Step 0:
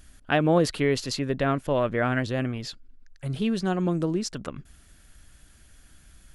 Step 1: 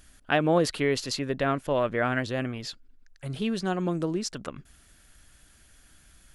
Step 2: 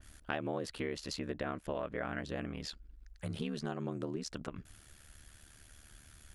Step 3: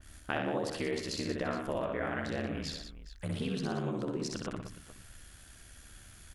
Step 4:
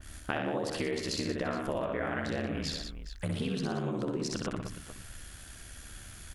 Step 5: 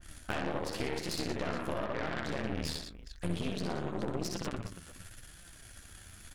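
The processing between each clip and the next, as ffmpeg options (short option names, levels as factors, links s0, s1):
-af "lowshelf=f=270:g=-5.5"
-af "aeval=exprs='val(0)*sin(2*PI*37*n/s)':c=same,acompressor=threshold=0.0126:ratio=4,adynamicequalizer=threshold=0.00126:dfrequency=2900:dqfactor=0.7:tfrequency=2900:tqfactor=0.7:attack=5:release=100:ratio=0.375:range=1.5:mode=cutabove:tftype=highshelf,volume=1.26"
-af "aecho=1:1:63|117|181|418:0.668|0.376|0.299|0.158,volume=1.26"
-af "acompressor=threshold=0.0141:ratio=2.5,volume=2"
-af "flanger=delay=5.7:depth=6.3:regen=42:speed=0.92:shape=sinusoidal,aeval=exprs='0.0944*(cos(1*acos(clip(val(0)/0.0944,-1,1)))-cos(1*PI/2))+0.015*(cos(8*acos(clip(val(0)/0.0944,-1,1)))-cos(8*PI/2))':c=same"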